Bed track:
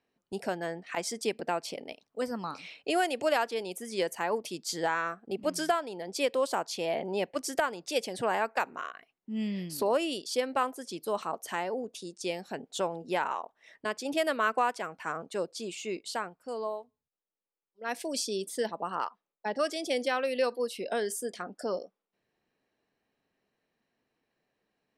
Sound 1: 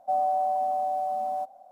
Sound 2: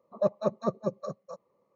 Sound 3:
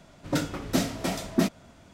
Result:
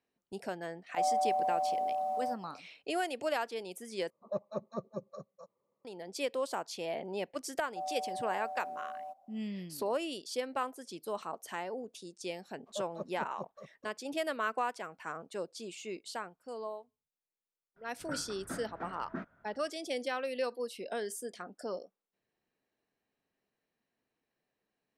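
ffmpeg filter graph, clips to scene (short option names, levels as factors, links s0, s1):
-filter_complex "[1:a]asplit=2[s0][s1];[2:a]asplit=2[s2][s3];[0:a]volume=0.501[s4];[s0]acontrast=75[s5];[s3]aeval=exprs='sgn(val(0))*max(abs(val(0))-0.00126,0)':c=same[s6];[3:a]lowpass=f=1500:t=q:w=5[s7];[s4]asplit=2[s8][s9];[s8]atrim=end=4.104[s10];[s2]atrim=end=1.75,asetpts=PTS-STARTPTS,volume=0.316[s11];[s9]atrim=start=5.846[s12];[s5]atrim=end=1.71,asetpts=PTS-STARTPTS,volume=0.266,afade=t=in:d=0.004:c=hsin,afade=t=out:st=1.706:d=0.004:c=hsin,adelay=890[s13];[s1]atrim=end=1.71,asetpts=PTS-STARTPTS,volume=0.211,afade=t=in:d=0.004:c=hsin,afade=t=out:st=1.706:d=0.004:c=hsin,adelay=7680[s14];[s6]atrim=end=1.75,asetpts=PTS-STARTPTS,volume=0.2,afade=t=in:d=0.004:c=hsin,afade=t=out:st=1.746:d=0.004:c=hsin,adelay=12540[s15];[s7]atrim=end=1.93,asetpts=PTS-STARTPTS,volume=0.126,afade=t=in:d=0.004:c=hsin,afade=t=out:st=1.926:d=0.004:c=hsin,adelay=17760[s16];[s10][s11]acrossfade=d=0.004:c1=hsin:c2=hsin[s17];[s17][s12]acrossfade=d=0.004:c1=hsin:c2=hsin[s18];[s18][s13][s14][s15][s16]amix=inputs=5:normalize=0"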